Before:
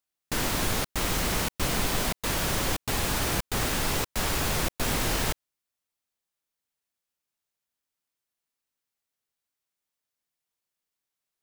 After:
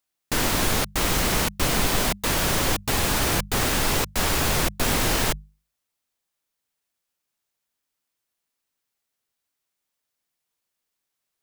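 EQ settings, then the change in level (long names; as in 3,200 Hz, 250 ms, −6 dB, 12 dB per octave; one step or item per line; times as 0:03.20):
mains-hum notches 50/100/150/200 Hz
+5.0 dB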